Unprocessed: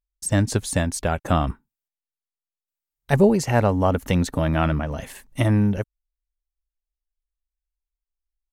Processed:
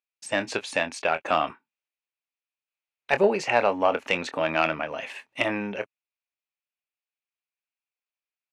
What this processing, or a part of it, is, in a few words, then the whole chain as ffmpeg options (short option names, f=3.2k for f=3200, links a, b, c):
intercom: -filter_complex "[0:a]highpass=500,lowpass=4k,equalizer=f=2.5k:t=o:w=0.36:g=11,asoftclip=type=tanh:threshold=-8.5dB,asplit=2[a][b];[b]adelay=25,volume=-11.5dB[c];[a][c]amix=inputs=2:normalize=0,volume=1.5dB"